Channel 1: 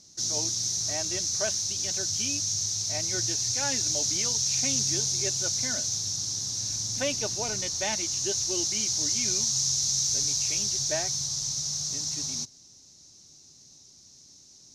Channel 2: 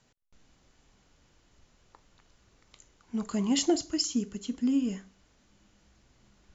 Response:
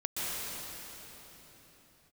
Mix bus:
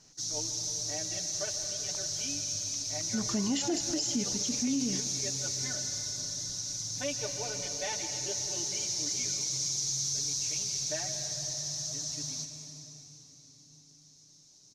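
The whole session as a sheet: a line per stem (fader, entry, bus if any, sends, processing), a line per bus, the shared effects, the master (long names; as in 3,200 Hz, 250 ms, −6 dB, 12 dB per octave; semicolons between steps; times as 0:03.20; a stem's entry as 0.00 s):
−11.0 dB, 0.00 s, send −10.5 dB, no echo send, comb filter 6.8 ms, depth 95%
+1.0 dB, 0.00 s, no send, echo send −19 dB, no processing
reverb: on, pre-delay 115 ms
echo: repeating echo 195 ms, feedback 52%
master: brickwall limiter −22 dBFS, peak gain reduction 9 dB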